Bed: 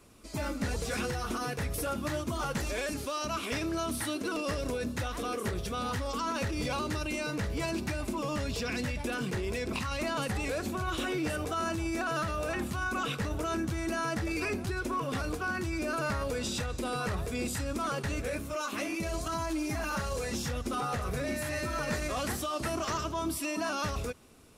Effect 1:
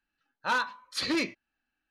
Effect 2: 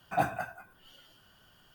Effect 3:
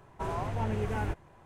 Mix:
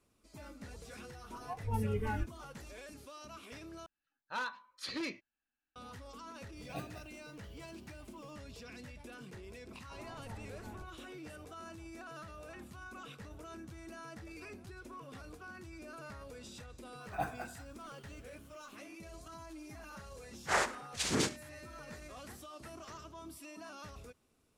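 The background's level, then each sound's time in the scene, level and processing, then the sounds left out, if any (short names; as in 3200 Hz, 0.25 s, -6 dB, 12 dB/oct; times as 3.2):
bed -16.5 dB
1.12 add 3 -1.5 dB + spectral noise reduction 21 dB
3.86 replace with 1 -10.5 dB
6.57 add 2 -8 dB + Chebyshev band-stop 500–2300 Hz
9.58 add 3 -18 dB + dispersion lows, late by 0.136 s, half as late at 2400 Hz
17.01 add 2 -8.5 dB
20.02 add 1 -3.5 dB + noise vocoder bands 3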